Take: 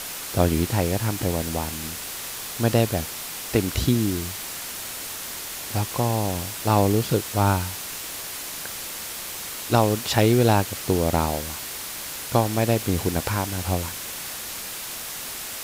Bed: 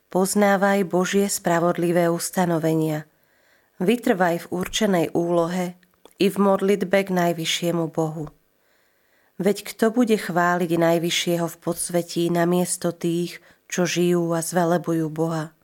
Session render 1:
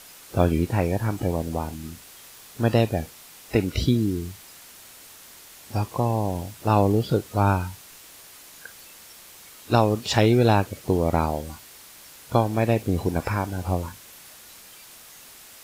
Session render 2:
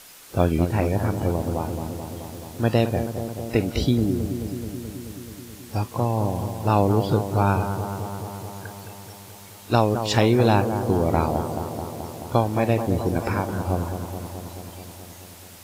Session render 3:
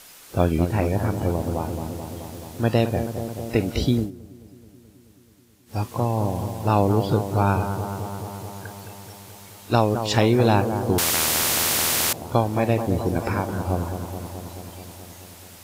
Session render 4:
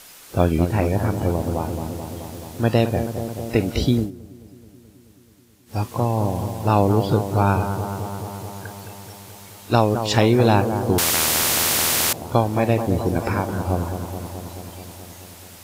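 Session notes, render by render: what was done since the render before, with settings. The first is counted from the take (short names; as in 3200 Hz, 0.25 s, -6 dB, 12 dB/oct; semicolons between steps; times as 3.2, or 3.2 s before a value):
noise print and reduce 13 dB
analogue delay 0.215 s, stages 2048, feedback 75%, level -8.5 dB
3.97–5.8 dip -16.5 dB, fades 0.14 s; 10.98–12.13 spectral compressor 10:1
gain +2 dB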